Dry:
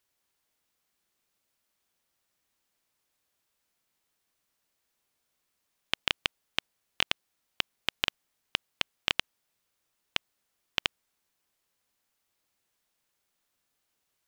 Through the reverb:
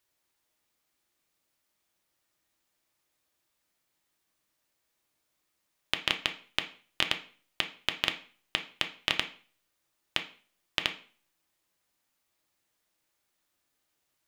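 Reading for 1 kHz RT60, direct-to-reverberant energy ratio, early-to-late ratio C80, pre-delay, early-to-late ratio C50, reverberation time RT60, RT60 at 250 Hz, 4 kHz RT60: 0.40 s, 5.0 dB, 18.0 dB, 3 ms, 12.5 dB, 0.40 s, 0.45 s, 0.40 s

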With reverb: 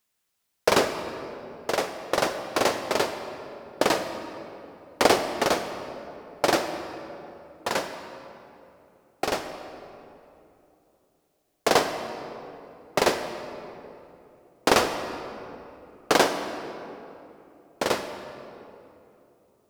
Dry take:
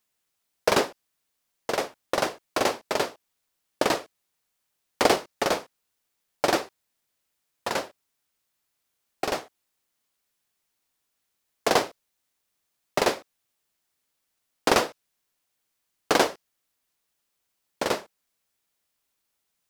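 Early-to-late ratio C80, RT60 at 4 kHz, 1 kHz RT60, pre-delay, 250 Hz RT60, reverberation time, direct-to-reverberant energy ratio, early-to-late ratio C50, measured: 8.5 dB, 1.7 s, 2.8 s, 39 ms, 3.4 s, 3.0 s, 7.5 dB, 8.0 dB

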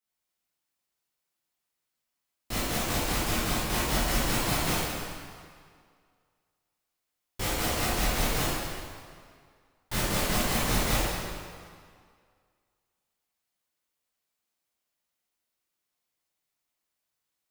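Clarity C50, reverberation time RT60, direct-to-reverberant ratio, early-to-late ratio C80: −4.0 dB, 2.0 s, −10.5 dB, −1.0 dB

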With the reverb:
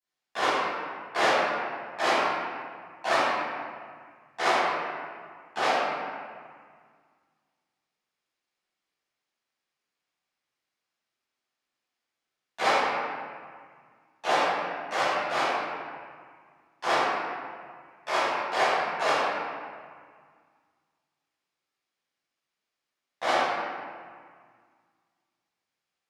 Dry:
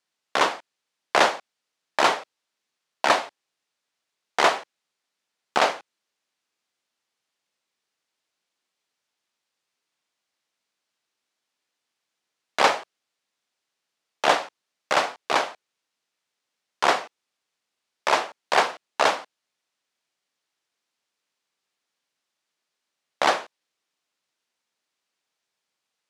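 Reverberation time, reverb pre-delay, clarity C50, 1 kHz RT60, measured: 1.8 s, 9 ms, −4.0 dB, 1.9 s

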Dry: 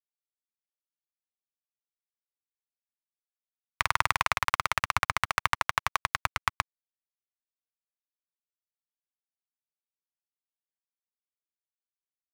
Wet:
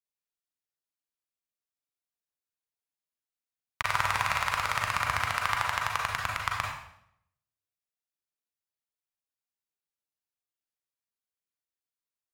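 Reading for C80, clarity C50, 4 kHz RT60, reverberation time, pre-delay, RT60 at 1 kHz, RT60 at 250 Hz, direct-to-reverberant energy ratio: 5.5 dB, 2.0 dB, 0.65 s, 0.70 s, 34 ms, 0.65 s, 0.85 s, −1.0 dB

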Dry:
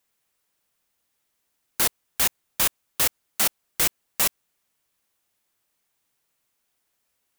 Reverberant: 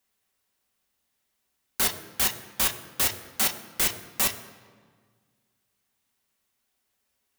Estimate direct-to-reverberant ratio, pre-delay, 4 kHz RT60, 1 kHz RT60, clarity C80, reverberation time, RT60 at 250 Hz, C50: 4.0 dB, 3 ms, 1.1 s, 1.6 s, 13.0 dB, 1.7 s, 2.1 s, 12.0 dB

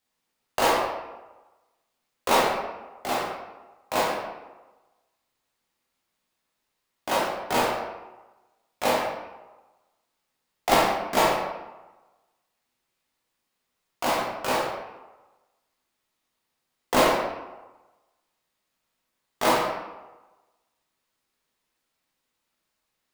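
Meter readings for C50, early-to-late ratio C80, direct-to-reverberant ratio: 0.5 dB, 3.5 dB, −6.0 dB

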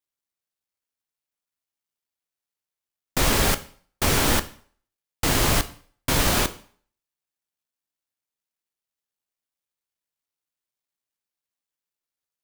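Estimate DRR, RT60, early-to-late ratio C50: 12.0 dB, 0.50 s, 17.0 dB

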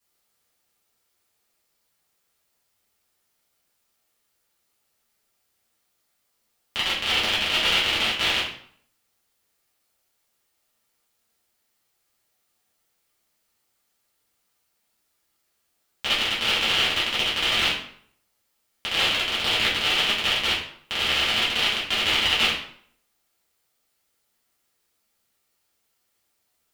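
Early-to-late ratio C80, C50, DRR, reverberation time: 8.0 dB, 4.0 dB, −10.0 dB, 0.60 s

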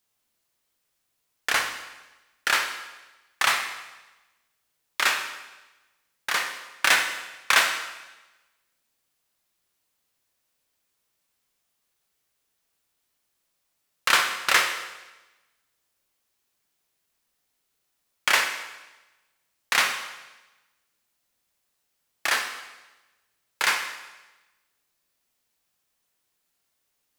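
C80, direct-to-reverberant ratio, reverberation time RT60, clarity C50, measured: 9.5 dB, 4.5 dB, 1.1 s, 7.0 dB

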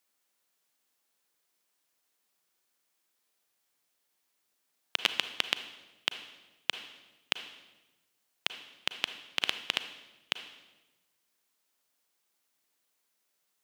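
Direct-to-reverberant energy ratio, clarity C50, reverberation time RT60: 9.5 dB, 10.5 dB, 1.1 s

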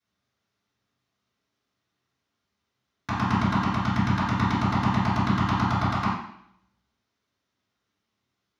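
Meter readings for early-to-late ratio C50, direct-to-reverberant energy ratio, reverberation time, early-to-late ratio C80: 0.5 dB, −13.5 dB, 0.70 s, 4.5 dB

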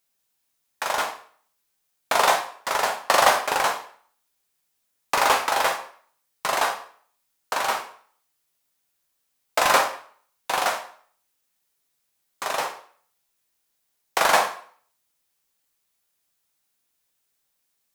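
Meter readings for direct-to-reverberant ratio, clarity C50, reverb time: 2.5 dB, 8.5 dB, 0.50 s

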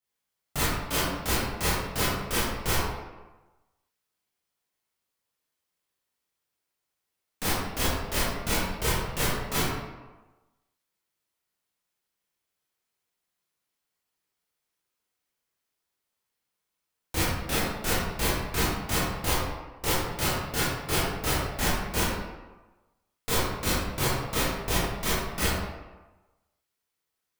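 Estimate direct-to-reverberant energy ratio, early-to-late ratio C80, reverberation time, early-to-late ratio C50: −10.0 dB, 1.5 dB, 1.2 s, −2.0 dB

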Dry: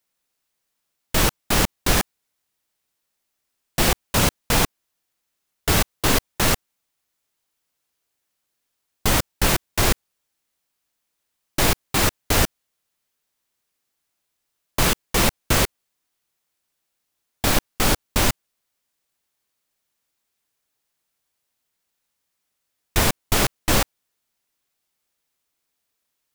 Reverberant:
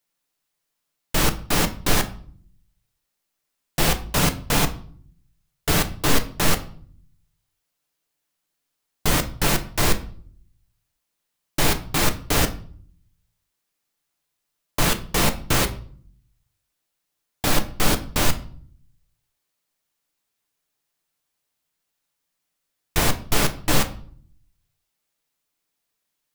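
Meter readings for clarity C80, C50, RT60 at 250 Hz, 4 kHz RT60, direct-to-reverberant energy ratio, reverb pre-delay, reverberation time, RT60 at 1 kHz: 19.5 dB, 14.5 dB, 0.80 s, 0.40 s, 7.0 dB, 6 ms, 0.50 s, 0.45 s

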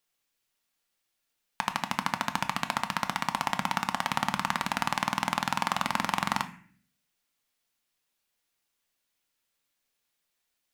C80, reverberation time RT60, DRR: 17.0 dB, 0.50 s, 7.5 dB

